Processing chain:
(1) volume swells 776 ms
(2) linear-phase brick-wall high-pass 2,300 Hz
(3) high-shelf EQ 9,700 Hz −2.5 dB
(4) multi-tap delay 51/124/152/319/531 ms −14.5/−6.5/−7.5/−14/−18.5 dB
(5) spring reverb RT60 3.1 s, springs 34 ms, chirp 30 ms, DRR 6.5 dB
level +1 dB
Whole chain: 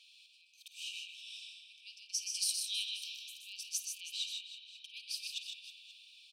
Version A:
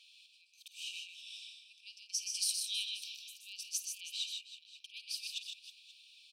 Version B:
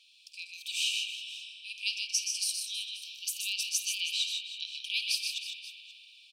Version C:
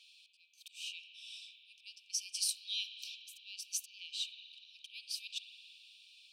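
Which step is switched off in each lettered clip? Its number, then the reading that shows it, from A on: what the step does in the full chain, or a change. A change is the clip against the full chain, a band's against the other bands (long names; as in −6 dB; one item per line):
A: 5, echo-to-direct ratio −1.0 dB to −3.0 dB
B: 1, change in crest factor −2.5 dB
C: 4, echo-to-direct ratio −1.0 dB to −6.5 dB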